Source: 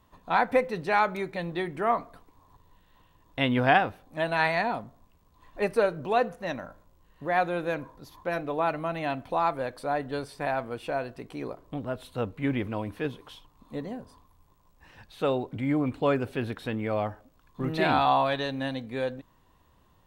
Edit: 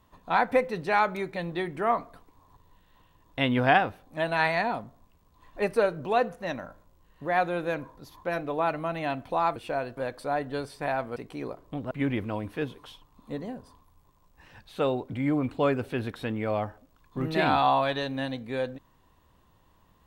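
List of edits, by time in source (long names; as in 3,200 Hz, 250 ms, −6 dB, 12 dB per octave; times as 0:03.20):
0:10.75–0:11.16: move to 0:09.56
0:11.91–0:12.34: remove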